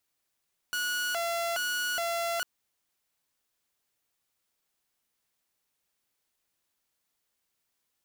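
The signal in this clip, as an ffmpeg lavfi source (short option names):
-f lavfi -i "aevalsrc='0.0501*(2*mod((1070*t+390/1.2*(0.5-abs(mod(1.2*t,1)-0.5))),1)-1)':d=1.7:s=44100"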